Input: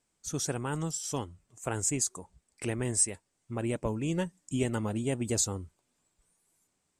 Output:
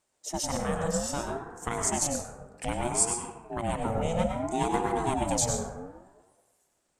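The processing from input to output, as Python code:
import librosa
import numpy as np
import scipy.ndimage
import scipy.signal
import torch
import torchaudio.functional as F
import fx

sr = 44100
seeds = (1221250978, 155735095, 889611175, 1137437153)

y = fx.rev_plate(x, sr, seeds[0], rt60_s=1.2, hf_ratio=0.35, predelay_ms=85, drr_db=2.0)
y = fx.ring_lfo(y, sr, carrier_hz=460.0, swing_pct=30, hz=0.62)
y = y * librosa.db_to_amplitude(3.5)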